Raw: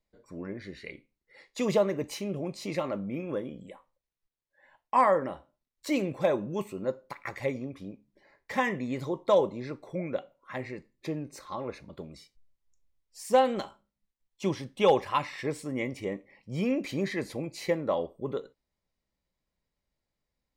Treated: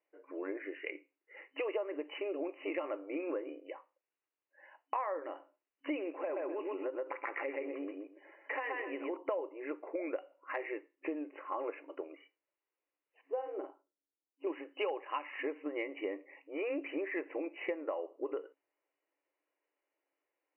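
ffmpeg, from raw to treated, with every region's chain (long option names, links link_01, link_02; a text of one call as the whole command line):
ffmpeg -i in.wav -filter_complex "[0:a]asettb=1/sr,asplit=3[link_01][link_02][link_03];[link_01]atrim=end=6.104[link_04];[link_02]atrim=start=6.1:end=9.17,asetpts=PTS-STARTPTS,afade=type=in:duration=0.004:curve=qsin,afade=type=out:start_time=3.066:duration=0.004:curve=qsin,aecho=1:1:125|250|375:0.708|0.12|0.0205,atrim=end_sample=135387,acompressor=threshold=-33dB:ratio=4:attack=3.2:release=140:knee=1:detection=peak[link_05];[link_03]atrim=start=9.166[link_06];[link_04][link_05]acrossfade=duration=0.004:curve1=hsin:curve2=qsin[link_07];[link_07][link_06]acrossfade=duration=0.004:curve1=qsin:curve2=hsin,asettb=1/sr,asplit=3[link_08][link_09][link_10];[link_08]atrim=end=13.214[link_11];[link_09]atrim=start=13.21:end=14.47,asetpts=PTS-STARTPTS,afade=type=in:duration=0.004:curve=qsin,afade=type=out:start_time=1.256:duration=0.004:curve=qsin,bandpass=frequency=180:width_type=q:width=0.78,asplit=2[link_12][link_13];[link_13]adelay=49,volume=-6dB[link_14];[link_12][link_14]amix=inputs=2:normalize=0,atrim=end_sample=55566[link_15];[link_10]atrim=start=14.466[link_16];[link_11][link_15]acrossfade=duration=0.004:curve1=hsin:curve2=qsin[link_17];[link_17][link_16]acrossfade=duration=0.004:curve1=qsin:curve2=hsin,afftfilt=real='re*between(b*sr/4096,270,3000)':imag='im*between(b*sr/4096,270,3000)':win_size=4096:overlap=0.75,acompressor=threshold=-36dB:ratio=8,volume=2.5dB" out.wav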